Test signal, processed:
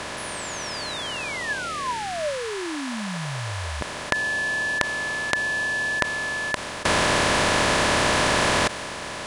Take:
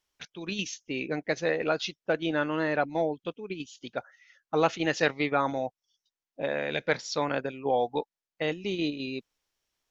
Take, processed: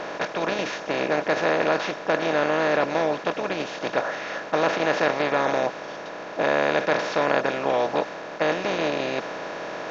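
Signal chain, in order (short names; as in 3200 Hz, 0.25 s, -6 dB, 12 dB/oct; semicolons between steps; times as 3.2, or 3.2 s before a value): per-bin compression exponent 0.2; LPF 3600 Hz 6 dB/oct; small resonant body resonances 600/1000/1700 Hz, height 7 dB; mismatched tape noise reduction decoder only; gain -4.5 dB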